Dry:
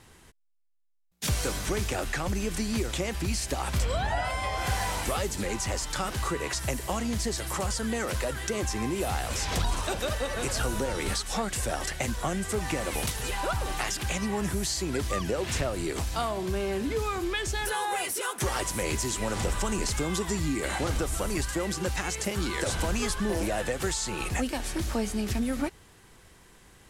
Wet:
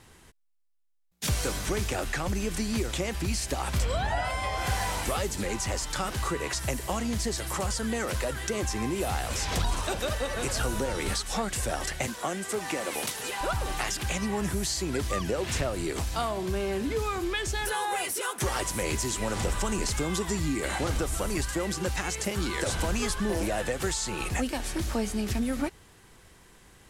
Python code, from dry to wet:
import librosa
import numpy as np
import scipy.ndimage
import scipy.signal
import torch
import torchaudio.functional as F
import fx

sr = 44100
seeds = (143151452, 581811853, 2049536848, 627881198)

y = fx.highpass(x, sr, hz=240.0, slope=12, at=(12.07, 13.41))